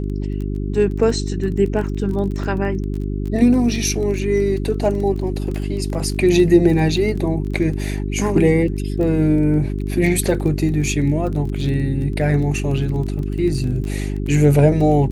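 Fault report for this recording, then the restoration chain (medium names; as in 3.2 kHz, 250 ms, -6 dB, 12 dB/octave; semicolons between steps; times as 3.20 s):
crackle 21 per s -26 dBFS
hum 50 Hz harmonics 8 -23 dBFS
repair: de-click; de-hum 50 Hz, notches 8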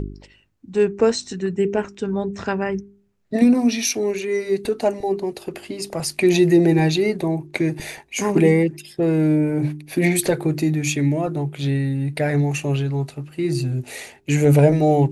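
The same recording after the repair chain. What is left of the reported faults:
nothing left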